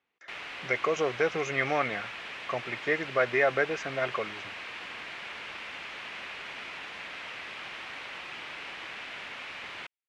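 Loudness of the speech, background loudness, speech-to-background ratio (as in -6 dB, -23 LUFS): -29.5 LUFS, -39.0 LUFS, 9.5 dB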